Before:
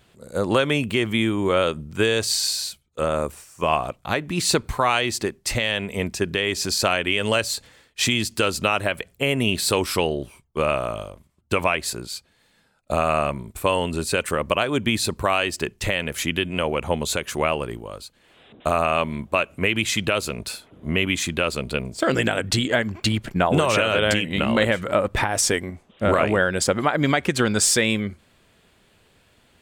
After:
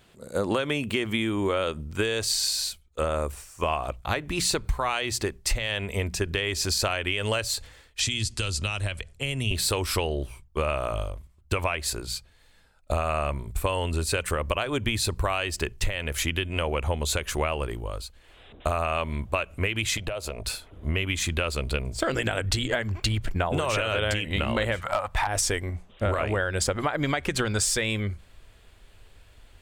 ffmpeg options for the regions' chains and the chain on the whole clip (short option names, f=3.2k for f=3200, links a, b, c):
-filter_complex "[0:a]asettb=1/sr,asplit=3[a][b][c];[a]atrim=end=8.004[d];[b]atrim=start=8:end=9.51,asetpts=PTS-STARTPTS,afade=t=in:d=0.004:c=qsin,afade=t=out:st=1.506:d=0.004:c=qsin,lowpass=f=9.7k:w=0.5412,lowpass=f=9.7k:w=1.3066,acrossover=split=190|3000[e][f][g];[f]acompressor=threshold=-42dB:ratio=2:attack=3.2:release=140:knee=2.83:detection=peak[h];[e][h][g]amix=inputs=3:normalize=0[i];[c]atrim=start=9.506[j];[d][i]acrossfade=d=0.004:c1=hsin:c2=qsin[k];[k][j]acrossfade=d=0.004:c1=qsin:c2=hsin,asettb=1/sr,asplit=3[l][m][n];[l]atrim=end=19.974[o];[m]atrim=start=19.97:end=20.44,asetpts=PTS-STARTPTS,afade=t=in:d=0.004:c=qsin,afade=t=out:st=0.466:d=0.004:c=qsin,agate=range=-33dB:threshold=-28dB:ratio=3:release=100:detection=peak,equalizer=f=650:t=o:w=0.88:g=11,acompressor=threshold=-28dB:ratio=8:attack=3.2:release=140:knee=1:detection=peak[p];[n]atrim=start=20.436[q];[o][p]acrossfade=d=0.004:c1=hsin:c2=qsin[r];[r][q]acrossfade=d=0.004:c1=qsin:c2=hsin,asettb=1/sr,asplit=3[s][t][u];[s]atrim=end=24.804[v];[t]atrim=start=24.8:end=25.27,asetpts=PTS-STARTPTS,afade=t=in:d=0.004:c=qsin,afade=t=out:st=0.466:d=0.004:c=qsin,lowshelf=f=570:t=q:w=3:g=-10.5,volume=12.5dB,asoftclip=hard,volume=-12.5dB[w];[u]atrim=start=25.266[x];[v][w]acrossfade=d=0.004:c1=hsin:c2=qsin[y];[y][x]acrossfade=d=0.004:c1=qsin:c2=hsin,bandreject=f=60:t=h:w=6,bandreject=f=120:t=h:w=6,bandreject=f=180:t=h:w=6,asubboost=boost=11:cutoff=55,acompressor=threshold=-22dB:ratio=6"